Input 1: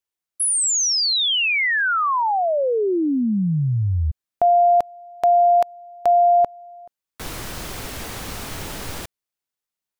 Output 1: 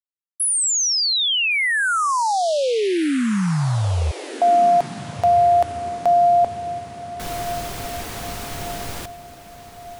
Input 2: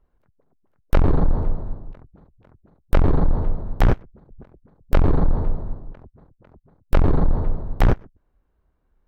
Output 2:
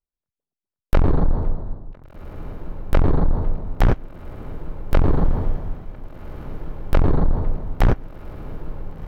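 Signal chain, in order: gate with hold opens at -42 dBFS, range -28 dB; diffused feedback echo 1.501 s, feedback 51%, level -14 dB

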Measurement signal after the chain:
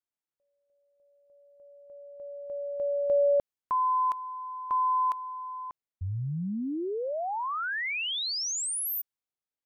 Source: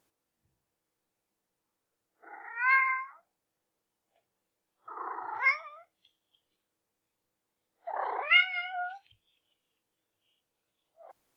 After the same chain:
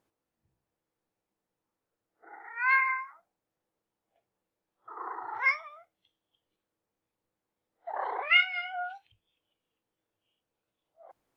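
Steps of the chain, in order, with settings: mismatched tape noise reduction decoder only

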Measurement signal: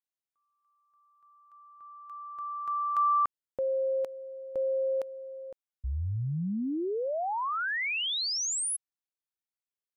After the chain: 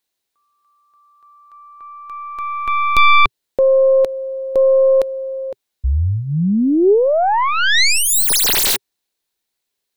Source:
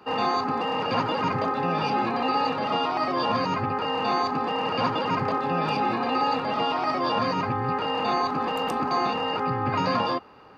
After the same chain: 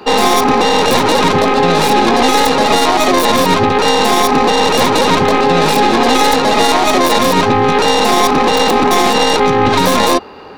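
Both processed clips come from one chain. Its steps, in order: tracing distortion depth 0.39 ms; thirty-one-band EQ 125 Hz -11 dB, 400 Hz +5 dB, 1250 Hz -5 dB, 4000 Hz +6 dB; maximiser +17.5 dB; gain -1 dB

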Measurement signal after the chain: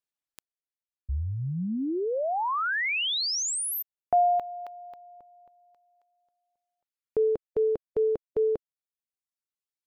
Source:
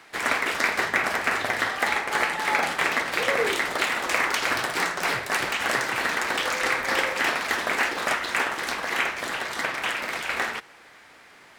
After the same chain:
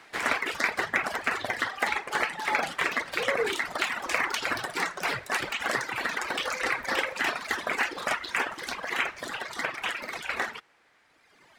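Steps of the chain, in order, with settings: reverb removal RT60 2 s; high shelf 9000 Hz -5 dB; gain -1.5 dB

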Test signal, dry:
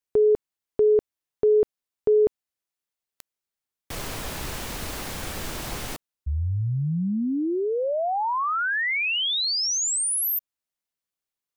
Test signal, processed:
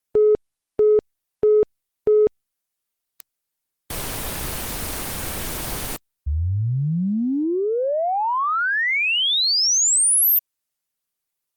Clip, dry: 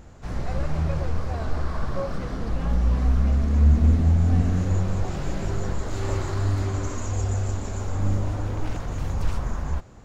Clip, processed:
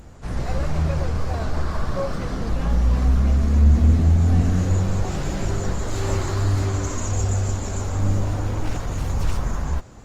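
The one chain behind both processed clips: high shelf 4900 Hz +6 dB; in parallel at -6 dB: soft clip -16.5 dBFS; on the sum: Opus 32 kbps 48000 Hz

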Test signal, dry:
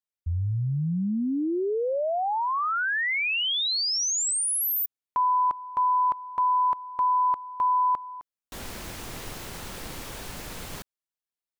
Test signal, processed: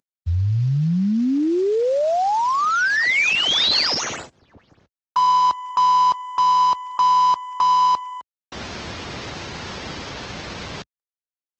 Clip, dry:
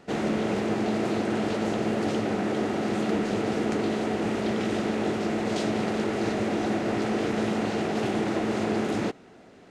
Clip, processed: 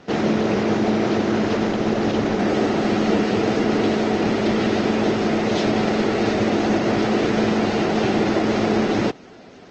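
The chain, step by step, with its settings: CVSD 32 kbps; HPF 62 Hz 24 dB/oct; gain +7.5 dB; Opus 16 kbps 48000 Hz

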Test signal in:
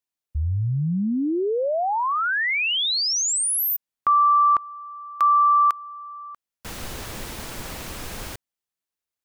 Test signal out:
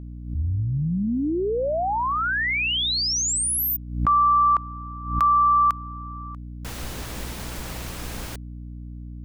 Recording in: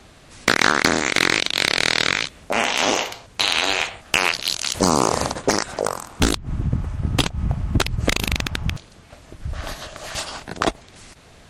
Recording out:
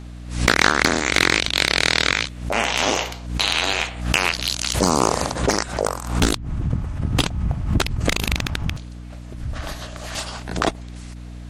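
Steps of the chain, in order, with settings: hum 60 Hz, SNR 12 dB; backwards sustainer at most 89 dB/s; gain -1 dB

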